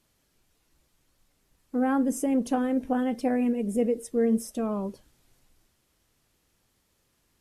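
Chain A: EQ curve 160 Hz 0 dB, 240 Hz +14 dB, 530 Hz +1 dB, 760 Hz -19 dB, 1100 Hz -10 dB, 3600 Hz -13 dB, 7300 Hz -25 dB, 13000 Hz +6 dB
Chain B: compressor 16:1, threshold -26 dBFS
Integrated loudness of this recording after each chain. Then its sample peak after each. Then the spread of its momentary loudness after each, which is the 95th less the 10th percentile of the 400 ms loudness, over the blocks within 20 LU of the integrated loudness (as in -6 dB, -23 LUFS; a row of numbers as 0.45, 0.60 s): -16.0, -32.0 LUFS; -5.0, -19.0 dBFS; 8, 3 LU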